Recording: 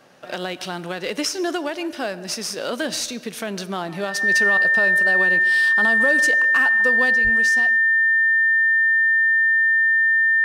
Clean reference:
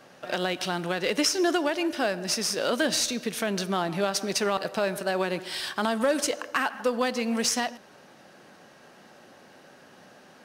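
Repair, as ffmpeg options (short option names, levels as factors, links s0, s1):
-filter_complex "[0:a]bandreject=f=1800:w=30,asplit=3[s0][s1][s2];[s0]afade=t=out:st=7.23:d=0.02[s3];[s1]highpass=f=140:w=0.5412,highpass=f=140:w=1.3066,afade=t=in:st=7.23:d=0.02,afade=t=out:st=7.35:d=0.02[s4];[s2]afade=t=in:st=7.35:d=0.02[s5];[s3][s4][s5]amix=inputs=3:normalize=0,asetnsamples=n=441:p=0,asendcmd='7.15 volume volume 6dB',volume=1"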